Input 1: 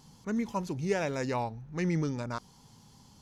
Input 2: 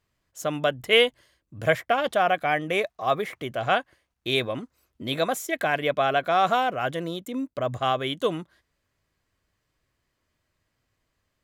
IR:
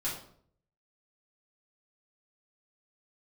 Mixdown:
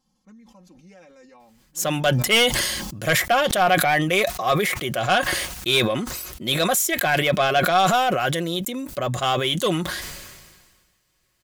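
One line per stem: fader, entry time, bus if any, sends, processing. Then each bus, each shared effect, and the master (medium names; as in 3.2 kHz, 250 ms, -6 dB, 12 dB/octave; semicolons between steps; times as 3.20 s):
-17.5 dB, 0.00 s, no send, comb 3.8 ms, depth 92%; compression, threshold -30 dBFS, peak gain reduction 8 dB
+2.5 dB, 1.40 s, no send, treble shelf 3.2 kHz +12 dB; saturation -14.5 dBFS, distortion -12 dB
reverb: none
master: comb 5.5 ms, depth 41%; decay stretcher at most 37 dB/s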